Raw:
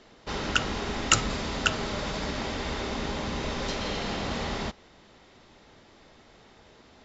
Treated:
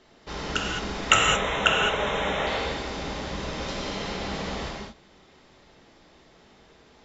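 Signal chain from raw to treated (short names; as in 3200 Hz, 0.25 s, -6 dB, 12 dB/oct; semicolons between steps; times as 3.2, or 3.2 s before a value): 1.1–2.47 Butterworth band-stop 4600 Hz, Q 2.1; 1.1–2.6 spectral gain 390–4500 Hz +8 dB; non-linear reverb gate 0.24 s flat, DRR -1.5 dB; gain -4 dB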